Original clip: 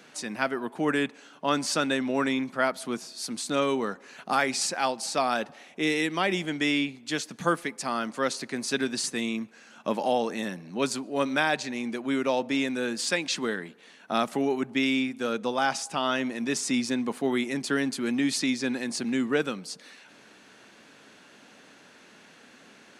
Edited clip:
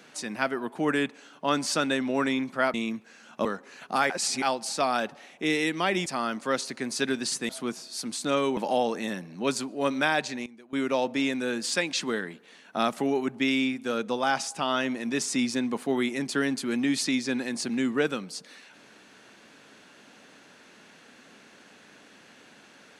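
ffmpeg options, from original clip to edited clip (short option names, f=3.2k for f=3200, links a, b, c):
-filter_complex "[0:a]asplit=10[a][b][c][d][e][f][g][h][i][j];[a]atrim=end=2.742[k];[b]atrim=start=9.208:end=9.922[l];[c]atrim=start=3.818:end=4.472[m];[d]atrim=start=4.468:end=4.792,asetpts=PTS-STARTPTS,areverse[n];[e]atrim=start=4.788:end=6.432[o];[f]atrim=start=7.778:end=9.212[p];[g]atrim=start=2.738:end=3.822[q];[h]atrim=start=9.918:end=11.81,asetpts=PTS-STARTPTS,afade=t=out:st=1.572:d=0.32:c=log:silence=0.125893[r];[i]atrim=start=11.81:end=12.08,asetpts=PTS-STARTPTS,volume=-18dB[s];[j]atrim=start=12.08,asetpts=PTS-STARTPTS,afade=t=in:d=0.32:c=log:silence=0.125893[t];[k][l]acrossfade=d=0.004:c1=hsin:c2=hsin[u];[u][m]acrossfade=d=0.004:c1=hsin:c2=hsin[v];[v][n]acrossfade=d=0.004:c1=hsin:c2=hsin[w];[w][o]acrossfade=d=0.004:c1=hsin:c2=hsin[x];[x][p]acrossfade=d=0.004:c1=hsin:c2=hsin[y];[y][q]acrossfade=d=0.004:c1=hsin:c2=hsin[z];[r][s][t]concat=n=3:v=0:a=1[aa];[z][aa]acrossfade=d=0.004:c1=hsin:c2=hsin"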